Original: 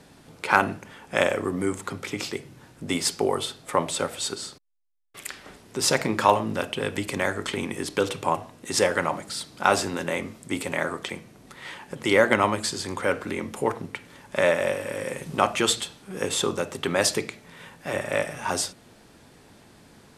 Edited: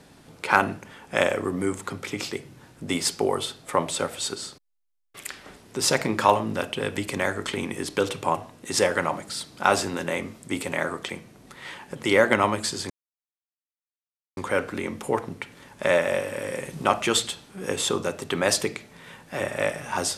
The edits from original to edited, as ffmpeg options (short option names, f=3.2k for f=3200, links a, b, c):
-filter_complex "[0:a]asplit=2[a][b];[a]atrim=end=12.9,asetpts=PTS-STARTPTS,afade=t=out:st=12.896:d=0.004:c=hsin,apad=pad_dur=1.47[c];[b]atrim=start=12.9,asetpts=PTS-STARTPTS,afade=t=in:d=0.004:c=hsin[d];[c][d]concat=n=2:v=0:a=1"